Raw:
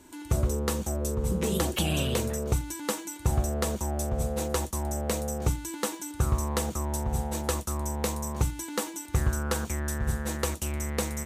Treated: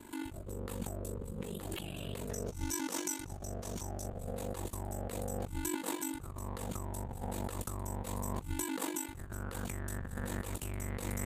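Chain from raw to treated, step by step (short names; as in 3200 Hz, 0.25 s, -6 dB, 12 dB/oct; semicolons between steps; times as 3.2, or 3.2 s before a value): bell 5800 Hz -11.5 dB 0.42 oct, from 2.29 s +5.5 dB, from 4.07 s -9 dB; negative-ratio compressor -35 dBFS, ratio -1; ring modulator 24 Hz; gain -1.5 dB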